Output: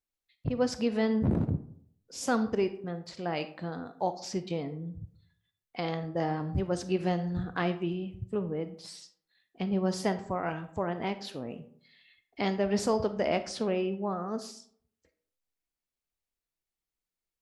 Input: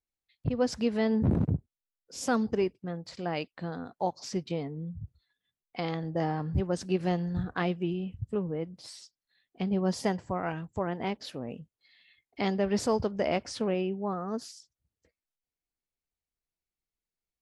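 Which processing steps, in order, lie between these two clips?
bell 76 Hz -2.5 dB 2.7 oct; on a send: reverb RT60 0.60 s, pre-delay 4 ms, DRR 10.5 dB

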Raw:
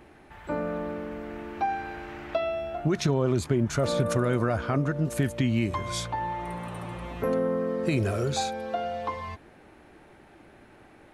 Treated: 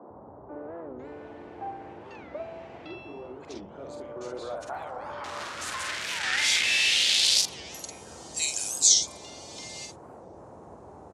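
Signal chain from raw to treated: 4.73–6.91 infinite clipping; weighting filter ITU-R 468; gate -42 dBFS, range -22 dB; tilt +2.5 dB/oct; AGC gain up to 9 dB; band-pass sweep 300 Hz -> 7000 Hz, 3.96–7.35; band noise 63–920 Hz -46 dBFS; doubler 48 ms -4 dB; three bands offset in time mids, lows, highs 90/510 ms, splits 180/1400 Hz; record warp 45 rpm, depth 250 cents; gain -1.5 dB

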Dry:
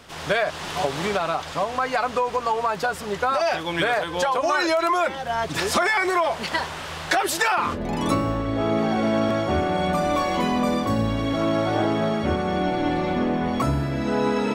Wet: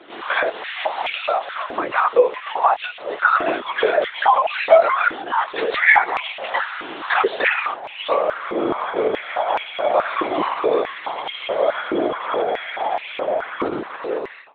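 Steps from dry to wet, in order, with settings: ending faded out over 0.76 s; 11.1–11.68 frequency shift -80 Hz; flange 0.24 Hz, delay 1.2 ms, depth 6.9 ms, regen -30%; LPC vocoder at 8 kHz whisper; stepped high-pass 4.7 Hz 330–2600 Hz; gain +4 dB

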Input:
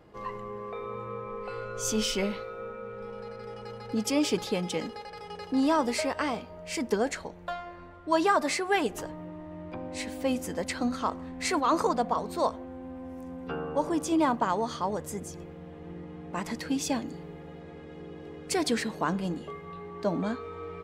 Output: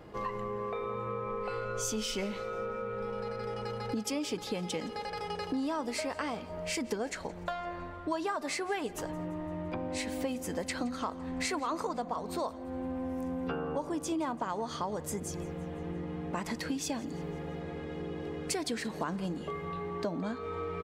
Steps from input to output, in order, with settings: compressor 5:1, threshold -38 dBFS, peak gain reduction 16.5 dB; feedback echo 0.17 s, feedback 55%, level -21.5 dB; gain +5.5 dB

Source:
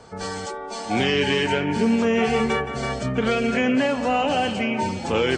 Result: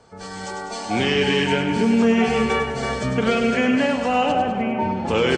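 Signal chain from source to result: 4.31–5.07 LPF 1300 Hz -> 2100 Hz 12 dB/oct; feedback echo 0.1 s, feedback 54%, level -7.5 dB; AGC; gain -6.5 dB

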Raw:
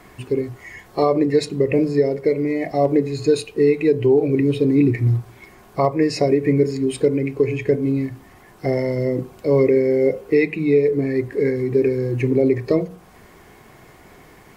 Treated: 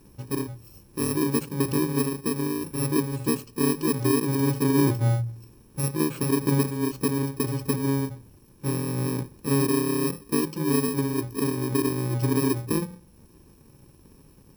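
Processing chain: FFT order left unsorted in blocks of 64 samples; tilt shelf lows +6.5 dB, about 930 Hz; de-hum 57.95 Hz, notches 2; added harmonics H 6 -41 dB, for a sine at -2.5 dBFS; gain -7.5 dB

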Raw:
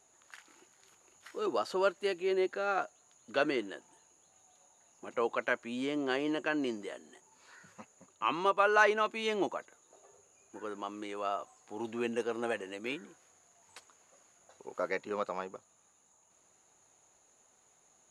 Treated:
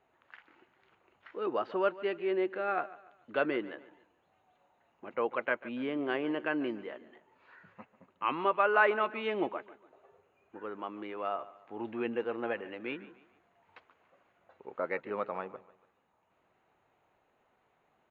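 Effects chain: LPF 2800 Hz 24 dB/oct; feedback echo 0.144 s, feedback 39%, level -18 dB

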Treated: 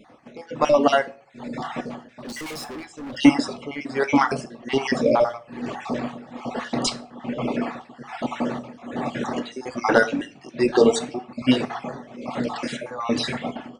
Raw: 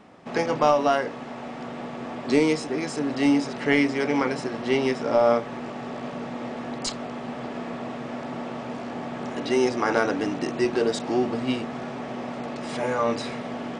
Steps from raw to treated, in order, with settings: random spectral dropouts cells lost 38%; AGC gain up to 9.5 dB; reverb removal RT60 1.5 s; tremolo 1.2 Hz, depth 90%; 2.05–3.17 overloaded stage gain 35 dB; on a send: reverb RT60 0.45 s, pre-delay 4 ms, DRR 11 dB; on the sum: gain +2 dB

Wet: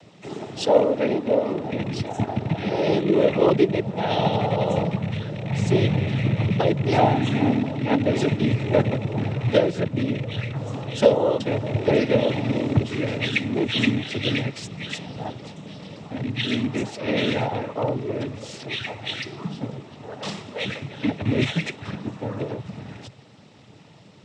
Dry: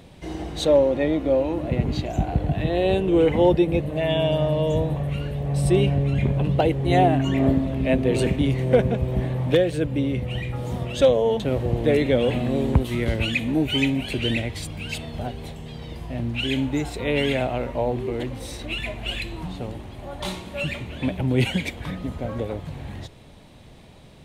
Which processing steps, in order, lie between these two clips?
rattling part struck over -22 dBFS, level -22 dBFS; noise vocoder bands 12

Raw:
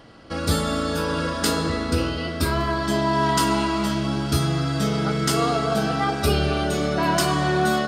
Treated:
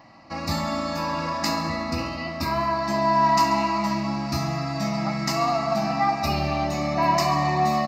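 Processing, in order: HPF 400 Hz 6 dB/oct; high shelf 2200 Hz -8.5 dB; fixed phaser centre 2200 Hz, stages 8; feedback echo 68 ms, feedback 56%, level -13 dB; gain +6 dB

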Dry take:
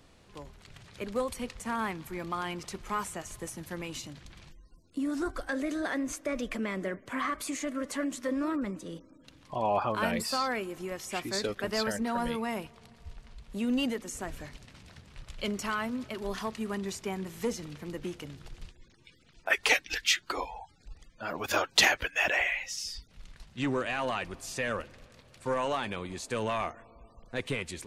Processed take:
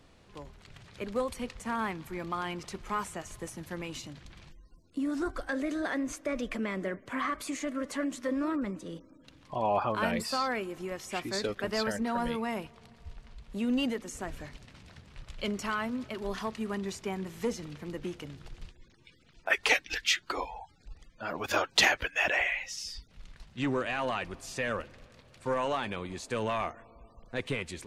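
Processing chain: high shelf 7200 Hz -6.5 dB

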